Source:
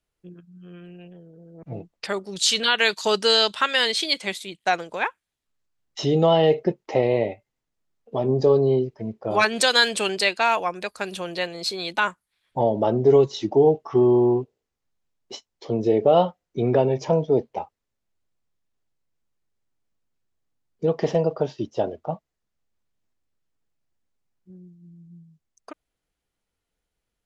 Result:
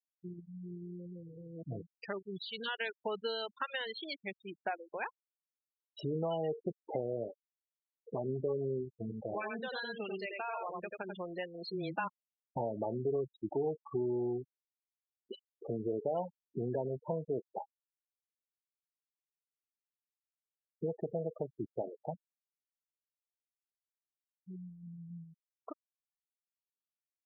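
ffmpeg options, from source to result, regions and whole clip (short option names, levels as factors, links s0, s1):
-filter_complex "[0:a]asettb=1/sr,asplit=3[s0][s1][s2];[s0]atrim=end=8.904[s3];[s1]atrim=start=8.9:end=11.13,asetpts=PTS-STARTPTS,afade=t=in:d=0.004:c=qsin,afade=t=out:st=2.226:d=0.004:c=qsin,acompressor=threshold=0.0501:ratio=2:attack=3.2:release=140:knee=1:detection=peak,aecho=1:1:89:0.668,atrim=end_sample=98343[s4];[s2]atrim=start=11.126[s5];[s3][s4]acrossfade=d=0.004:c1=hsin:c2=qsin[s6];[s6][s5]acrossfade=d=0.004:c1=qsin:c2=hsin,asettb=1/sr,asplit=3[s7][s8][s9];[s7]atrim=end=11.674[s10];[s8]atrim=start=11.67:end=12.08,asetpts=PTS-STARTPTS,afade=t=in:d=0.004:c=qsin,afade=t=out:st=0.406:d=0.004:c=qsin,lowshelf=f=420:g=10,aecho=1:1:5.9:0.54,atrim=end_sample=18081,afreqshift=-13[s11];[s9]atrim=start=12.076[s12];[s10][s11]acrossfade=d=0.004:c1=hsin:c2=qsin[s13];[s13][s12]acrossfade=d=0.004:c1=qsin:c2=hsin,acompressor=threshold=0.00891:ratio=2.5,lowpass=3200,afftfilt=real='re*gte(hypot(re,im),0.0224)':imag='im*gte(hypot(re,im),0.0224)':win_size=1024:overlap=0.75"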